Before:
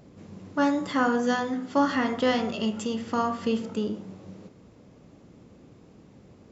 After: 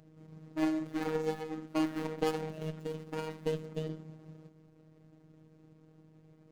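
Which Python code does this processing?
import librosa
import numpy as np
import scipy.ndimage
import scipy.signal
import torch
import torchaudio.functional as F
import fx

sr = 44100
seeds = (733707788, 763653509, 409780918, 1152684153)

y = scipy.signal.medfilt(x, 41)
y = fx.cheby_harmonics(y, sr, harmonics=(2, 3), levels_db=(-14, -17), full_scale_db=-15.5)
y = fx.robotise(y, sr, hz=157.0)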